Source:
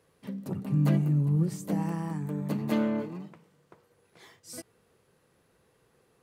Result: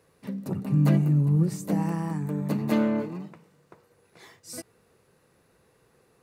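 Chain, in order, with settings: notch 3200 Hz, Q 11; gain +3.5 dB

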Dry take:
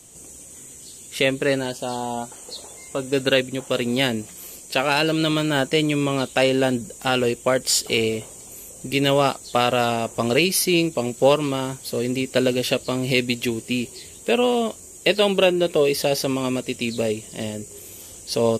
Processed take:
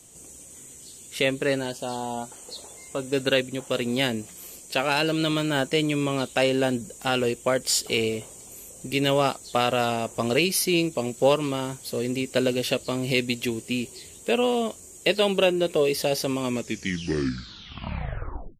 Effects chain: tape stop at the end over 2.16 s; gain -3.5 dB

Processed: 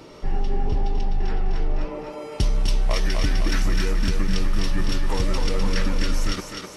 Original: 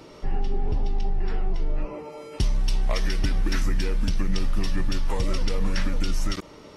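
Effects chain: thinning echo 0.254 s, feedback 61%, high-pass 270 Hz, level -4 dB; gain +2 dB

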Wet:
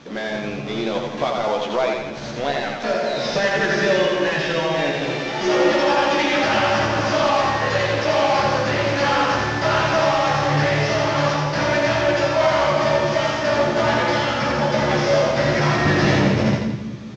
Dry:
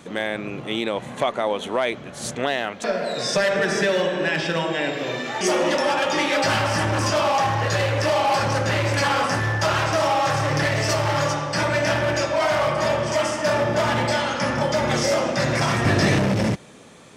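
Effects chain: CVSD 32 kbps; doubler 14 ms -4.5 dB; split-band echo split 340 Hz, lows 0.199 s, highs 86 ms, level -3.5 dB

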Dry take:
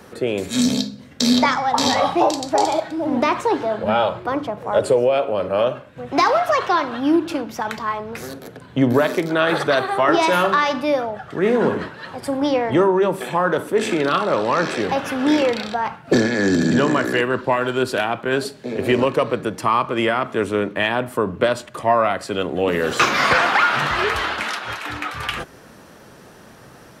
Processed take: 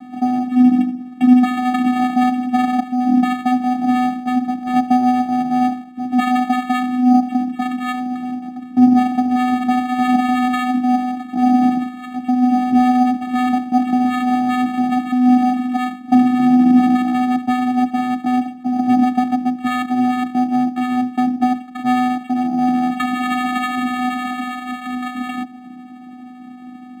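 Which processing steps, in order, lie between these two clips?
self-modulated delay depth 0.32 ms; vocoder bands 4, square 250 Hz; in parallel at +2 dB: compressor, threshold -26 dBFS, peak gain reduction 16.5 dB; on the sum: decimation joined by straight lines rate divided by 8×; gain +1.5 dB

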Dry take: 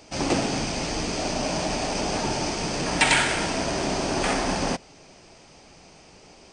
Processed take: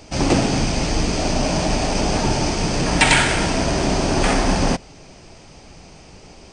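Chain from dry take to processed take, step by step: low shelf 150 Hz +10.5 dB; gain +4.5 dB

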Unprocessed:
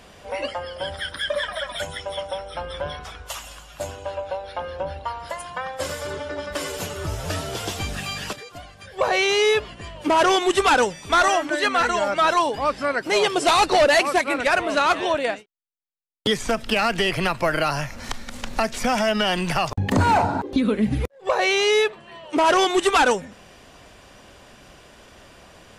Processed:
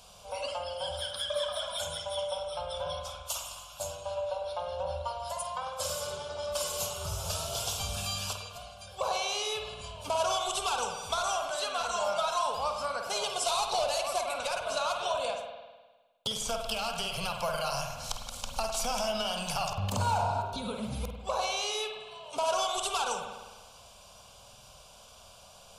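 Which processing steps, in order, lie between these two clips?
tilt shelf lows -5.5 dB, about 1500 Hz; compressor, threshold -22 dBFS, peak gain reduction 9 dB; fixed phaser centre 780 Hz, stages 4; flutter echo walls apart 8.5 m, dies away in 0.21 s; spring tank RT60 1.3 s, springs 51 ms, chirp 60 ms, DRR 3 dB; gain -3.5 dB

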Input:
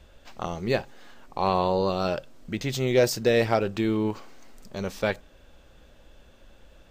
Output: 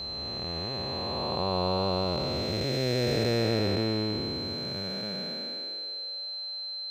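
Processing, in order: time blur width 0.9 s; whine 4100 Hz -34 dBFS; high-pass sweep 67 Hz -> 680 Hz, 4.31–6.37

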